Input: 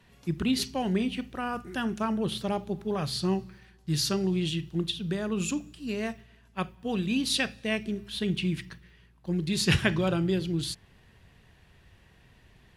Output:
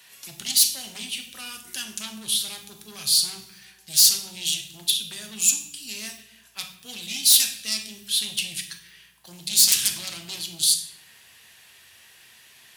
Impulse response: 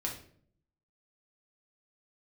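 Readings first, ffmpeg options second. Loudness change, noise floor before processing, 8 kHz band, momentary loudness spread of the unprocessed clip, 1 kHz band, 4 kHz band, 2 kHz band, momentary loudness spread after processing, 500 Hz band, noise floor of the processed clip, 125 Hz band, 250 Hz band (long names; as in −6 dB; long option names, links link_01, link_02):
+8.5 dB, −59 dBFS, +18.5 dB, 10 LU, −12.0 dB, +11.0 dB, −2.0 dB, 20 LU, −18.5 dB, −53 dBFS, −18.0 dB, −16.5 dB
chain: -filter_complex "[0:a]aeval=exprs='0.376*sin(PI/2*5.62*val(0)/0.376)':channel_layout=same,acrossover=split=200|3000[link_01][link_02][link_03];[link_02]acompressor=threshold=-35dB:ratio=2.5[link_04];[link_01][link_04][link_03]amix=inputs=3:normalize=0,aderivative,asplit=2[link_05][link_06];[1:a]atrim=start_sample=2205,asetrate=29988,aresample=44100[link_07];[link_06][link_07]afir=irnorm=-1:irlink=0,volume=-2dB[link_08];[link_05][link_08]amix=inputs=2:normalize=0,volume=-4.5dB"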